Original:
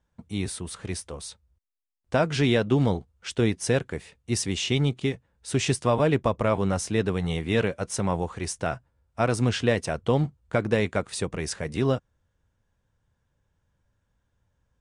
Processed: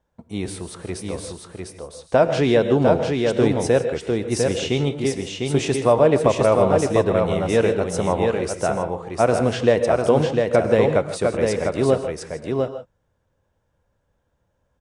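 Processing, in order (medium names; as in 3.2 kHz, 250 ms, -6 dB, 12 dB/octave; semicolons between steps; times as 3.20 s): peaking EQ 570 Hz +9.5 dB 1.8 oct; delay 701 ms -4 dB; gated-style reverb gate 180 ms rising, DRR 9.5 dB; trim -1 dB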